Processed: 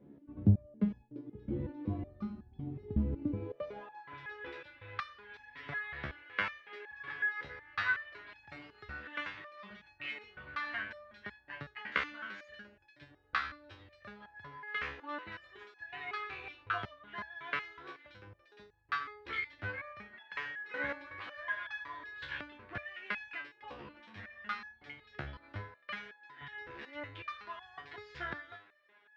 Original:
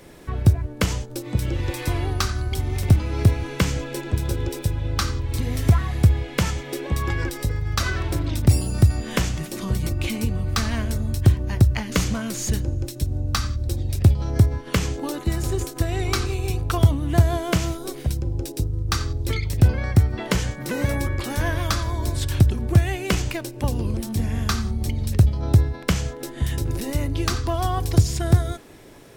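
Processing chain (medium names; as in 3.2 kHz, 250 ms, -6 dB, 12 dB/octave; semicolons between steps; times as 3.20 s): low-pass 3.9 kHz 24 dB/octave; in parallel at -5.5 dB: crossover distortion -32.5 dBFS; on the sum: band-pass sweep 230 Hz -> 1.7 kHz, 3.20–4.18 s; on a send at -7.5 dB: differentiator + reverberation, pre-delay 4 ms; on the sum: resonator arpeggio 5.4 Hz 71–850 Hz; trim +6 dB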